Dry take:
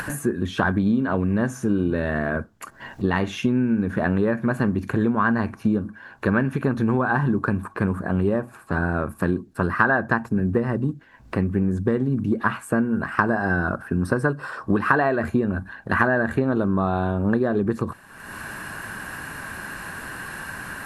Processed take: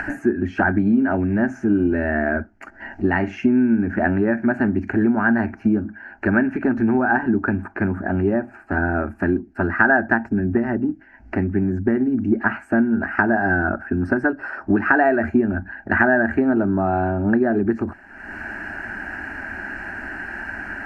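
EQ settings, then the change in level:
high-frequency loss of the air 210 metres
phaser with its sweep stopped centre 730 Hz, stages 8
+6.5 dB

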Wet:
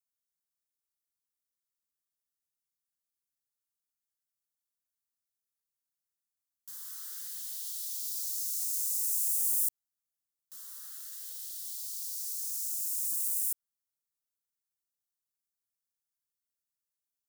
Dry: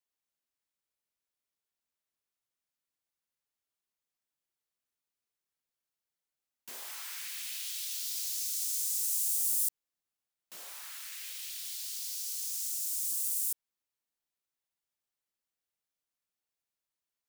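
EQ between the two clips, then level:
Butterworth band-reject 670 Hz, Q 0.75
high-shelf EQ 5,000 Hz +7 dB
phaser with its sweep stopped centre 1,000 Hz, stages 4
−5.0 dB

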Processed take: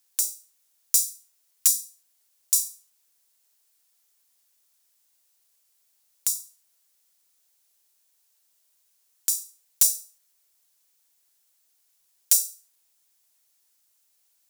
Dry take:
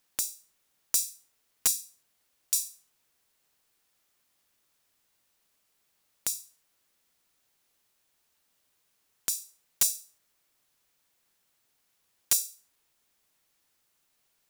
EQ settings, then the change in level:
bass and treble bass −13 dB, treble +11 dB
notch filter 1,200 Hz, Q 22
−4.5 dB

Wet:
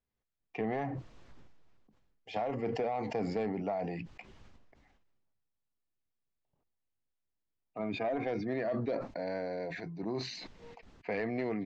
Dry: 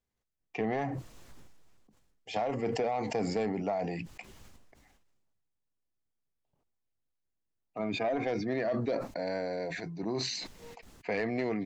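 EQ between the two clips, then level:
high-frequency loss of the air 150 metres
−2.0 dB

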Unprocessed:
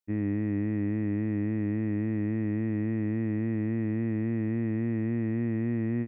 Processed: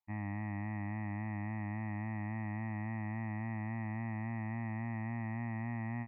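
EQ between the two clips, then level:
high-frequency loss of the air 430 metres
low shelf with overshoot 580 Hz −10.5 dB, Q 3
phaser with its sweep stopped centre 2,200 Hz, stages 8
+4.5 dB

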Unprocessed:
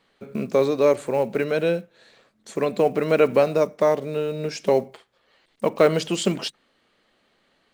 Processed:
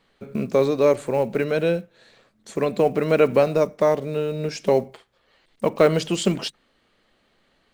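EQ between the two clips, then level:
low-shelf EQ 95 Hz +11 dB
0.0 dB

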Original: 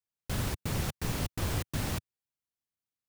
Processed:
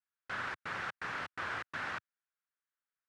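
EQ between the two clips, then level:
resonant band-pass 1,500 Hz, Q 2.8
high-frequency loss of the air 61 metres
+9.0 dB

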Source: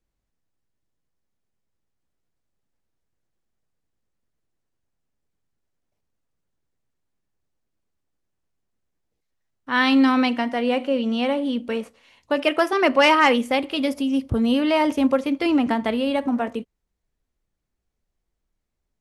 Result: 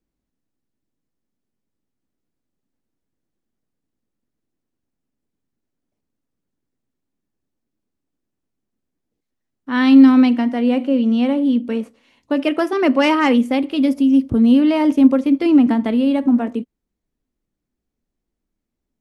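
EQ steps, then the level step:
parametric band 260 Hz +12 dB 1.2 octaves
−3.0 dB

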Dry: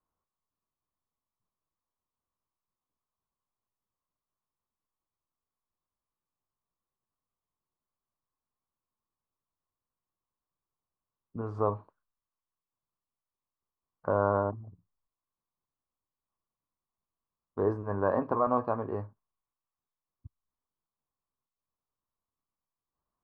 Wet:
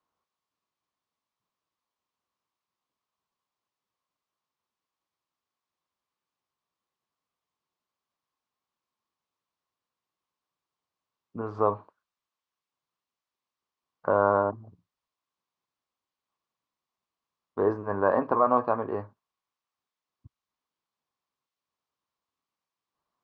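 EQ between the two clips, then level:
high-pass filter 250 Hz 6 dB per octave
high-frequency loss of the air 150 metres
high-shelf EQ 2,300 Hz +9 dB
+5.0 dB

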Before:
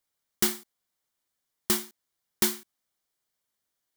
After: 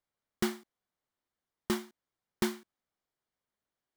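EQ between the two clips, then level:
low-pass filter 1,400 Hz 6 dB per octave
0.0 dB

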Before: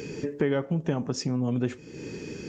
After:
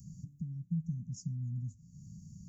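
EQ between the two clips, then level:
Chebyshev band-stop filter 190–6,800 Hz, order 4
phaser with its sweep stopped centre 2,000 Hz, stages 8
−3.5 dB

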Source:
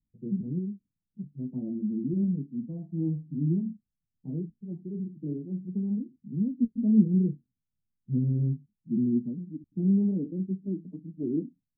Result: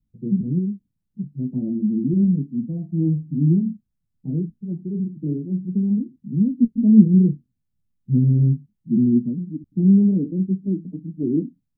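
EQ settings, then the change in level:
low-shelf EQ 490 Hz +11 dB
0.0 dB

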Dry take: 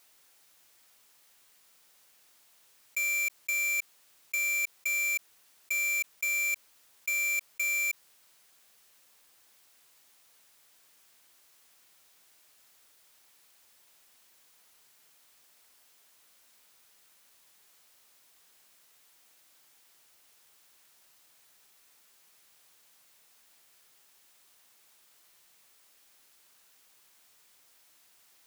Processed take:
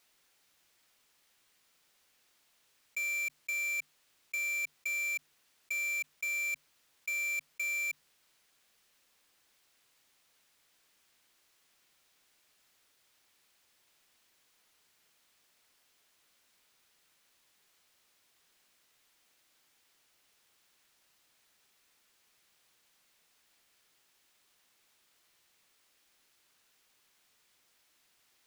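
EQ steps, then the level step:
parametric band 810 Hz −4.5 dB 2.2 octaves
high-shelf EQ 5,900 Hz −10 dB
mains-hum notches 50/100/150/200/250 Hz
−1.5 dB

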